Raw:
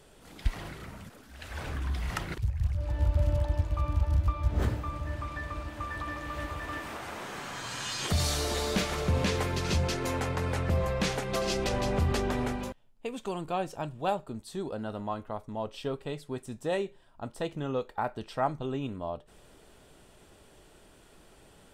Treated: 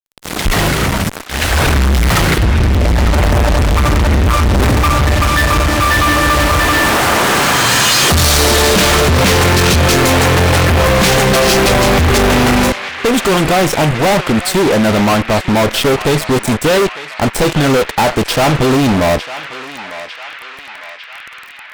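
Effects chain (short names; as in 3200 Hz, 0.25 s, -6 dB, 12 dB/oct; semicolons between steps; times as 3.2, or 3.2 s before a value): fuzz box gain 49 dB, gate -47 dBFS; narrowing echo 0.901 s, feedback 81%, band-pass 2100 Hz, level -9 dB; gain +4 dB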